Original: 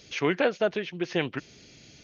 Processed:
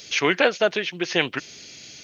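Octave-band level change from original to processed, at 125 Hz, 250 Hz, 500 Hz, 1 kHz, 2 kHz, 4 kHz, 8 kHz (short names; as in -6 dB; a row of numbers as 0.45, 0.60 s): 0.0 dB, +2.0 dB, +4.0 dB, +6.5 dB, +9.0 dB, +10.5 dB, n/a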